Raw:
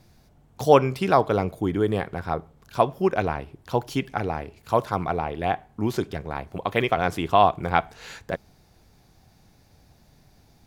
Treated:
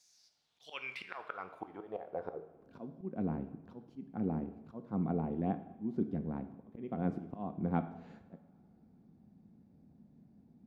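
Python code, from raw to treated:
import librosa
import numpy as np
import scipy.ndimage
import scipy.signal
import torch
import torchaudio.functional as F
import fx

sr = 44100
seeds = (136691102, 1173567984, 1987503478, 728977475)

y = fx.filter_sweep_bandpass(x, sr, from_hz=6600.0, to_hz=220.0, start_s=0.04, end_s=2.92, q=3.8)
y = fx.auto_swell(y, sr, attack_ms=363.0)
y = fx.rev_double_slope(y, sr, seeds[0], early_s=0.84, late_s=2.9, knee_db=-18, drr_db=9.0)
y = y * 10.0 ** (5.5 / 20.0)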